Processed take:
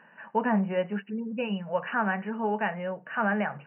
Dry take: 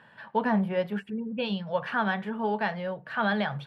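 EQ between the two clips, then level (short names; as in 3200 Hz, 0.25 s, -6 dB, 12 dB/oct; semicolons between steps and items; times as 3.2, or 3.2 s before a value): brick-wall FIR band-pass 150–3000 Hz; 0.0 dB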